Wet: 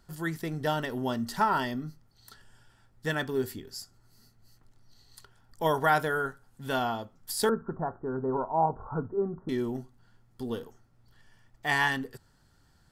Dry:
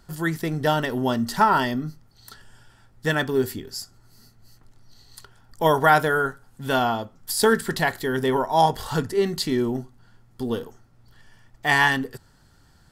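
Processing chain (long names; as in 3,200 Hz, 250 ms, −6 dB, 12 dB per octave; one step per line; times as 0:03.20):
0:07.49–0:09.49: Butterworth low-pass 1,400 Hz 72 dB per octave
level −7.5 dB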